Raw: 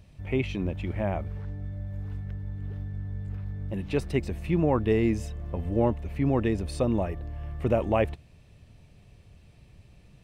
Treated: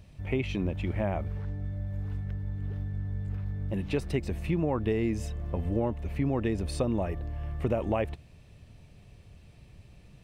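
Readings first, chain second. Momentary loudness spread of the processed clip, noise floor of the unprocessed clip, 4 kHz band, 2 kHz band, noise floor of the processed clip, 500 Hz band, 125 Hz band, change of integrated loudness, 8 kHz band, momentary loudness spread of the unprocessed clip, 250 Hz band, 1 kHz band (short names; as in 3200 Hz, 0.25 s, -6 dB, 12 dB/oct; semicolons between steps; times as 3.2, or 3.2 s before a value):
7 LU, -55 dBFS, -1.0 dB, -2.5 dB, -54 dBFS, -3.5 dB, -1.5 dB, -2.5 dB, 0.0 dB, 12 LU, -3.0 dB, -4.0 dB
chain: compressor, threshold -25 dBFS, peak gain reduction 7 dB; gain +1 dB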